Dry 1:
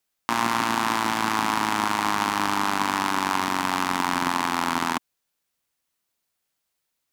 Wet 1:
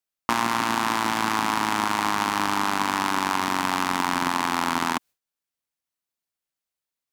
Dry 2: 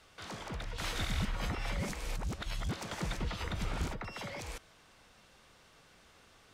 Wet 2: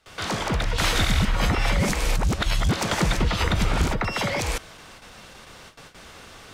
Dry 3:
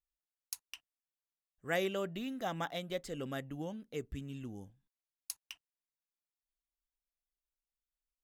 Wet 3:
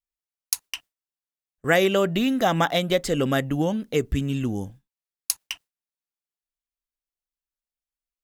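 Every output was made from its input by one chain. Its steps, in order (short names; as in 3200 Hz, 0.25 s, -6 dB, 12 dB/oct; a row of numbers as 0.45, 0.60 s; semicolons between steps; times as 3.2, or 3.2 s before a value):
gate with hold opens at -51 dBFS; compressor 2.5:1, threshold -35 dBFS; match loudness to -24 LUFS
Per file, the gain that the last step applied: +11.0, +17.0, +18.0 dB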